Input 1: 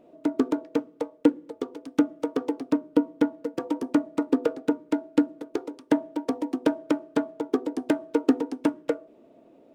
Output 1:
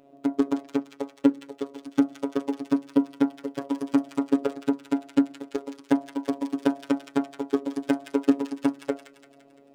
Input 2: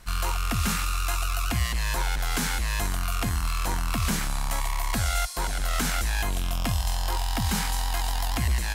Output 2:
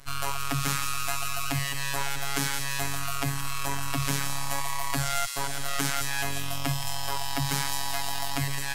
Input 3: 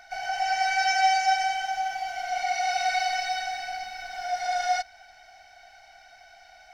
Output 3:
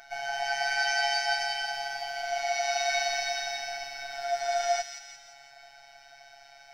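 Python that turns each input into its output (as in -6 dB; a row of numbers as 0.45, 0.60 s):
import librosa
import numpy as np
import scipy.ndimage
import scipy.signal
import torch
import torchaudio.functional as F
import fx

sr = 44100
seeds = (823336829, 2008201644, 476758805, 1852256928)

y = fx.robotise(x, sr, hz=139.0)
y = fx.echo_wet_highpass(y, sr, ms=171, feedback_pct=53, hz=2200.0, wet_db=-5.5)
y = y * librosa.db_to_amplitude(1.5)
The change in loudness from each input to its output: 0.0, -1.5, -2.5 LU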